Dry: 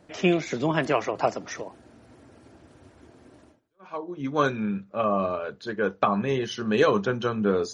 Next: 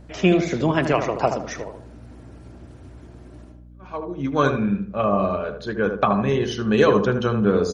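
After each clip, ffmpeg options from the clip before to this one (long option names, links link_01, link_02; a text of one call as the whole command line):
ffmpeg -i in.wav -filter_complex "[0:a]lowshelf=frequency=120:gain=11,asplit=2[link_01][link_02];[link_02]adelay=78,lowpass=frequency=1300:poles=1,volume=-6dB,asplit=2[link_03][link_04];[link_04]adelay=78,lowpass=frequency=1300:poles=1,volume=0.42,asplit=2[link_05][link_06];[link_06]adelay=78,lowpass=frequency=1300:poles=1,volume=0.42,asplit=2[link_07][link_08];[link_08]adelay=78,lowpass=frequency=1300:poles=1,volume=0.42,asplit=2[link_09][link_10];[link_10]adelay=78,lowpass=frequency=1300:poles=1,volume=0.42[link_11];[link_01][link_03][link_05][link_07][link_09][link_11]amix=inputs=6:normalize=0,aeval=exprs='val(0)+0.00501*(sin(2*PI*60*n/s)+sin(2*PI*2*60*n/s)/2+sin(2*PI*3*60*n/s)/3+sin(2*PI*4*60*n/s)/4+sin(2*PI*5*60*n/s)/5)':channel_layout=same,volume=2.5dB" out.wav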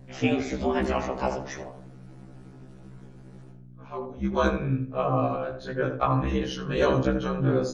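ffmpeg -i in.wav -af "aeval=exprs='val(0)*sin(2*PI*70*n/s)':channel_layout=same,afftfilt=real='re*1.73*eq(mod(b,3),0)':imag='im*1.73*eq(mod(b,3),0)':win_size=2048:overlap=0.75" out.wav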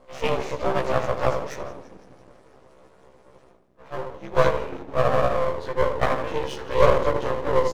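ffmpeg -i in.wav -filter_complex "[0:a]highpass=frequency=520:width_type=q:width=3.7,asplit=7[link_01][link_02][link_03][link_04][link_05][link_06][link_07];[link_02]adelay=168,afreqshift=-80,volume=-17dB[link_08];[link_03]adelay=336,afreqshift=-160,volume=-21dB[link_09];[link_04]adelay=504,afreqshift=-240,volume=-25dB[link_10];[link_05]adelay=672,afreqshift=-320,volume=-29dB[link_11];[link_06]adelay=840,afreqshift=-400,volume=-33.1dB[link_12];[link_07]adelay=1008,afreqshift=-480,volume=-37.1dB[link_13];[link_01][link_08][link_09][link_10][link_11][link_12][link_13]amix=inputs=7:normalize=0,aeval=exprs='max(val(0),0)':channel_layout=same,volume=2.5dB" out.wav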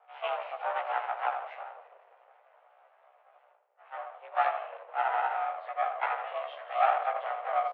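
ffmpeg -i in.wav -af "highpass=frequency=310:width_type=q:width=0.5412,highpass=frequency=310:width_type=q:width=1.307,lowpass=frequency=2900:width_type=q:width=0.5176,lowpass=frequency=2900:width_type=q:width=0.7071,lowpass=frequency=2900:width_type=q:width=1.932,afreqshift=210,volume=-7.5dB" out.wav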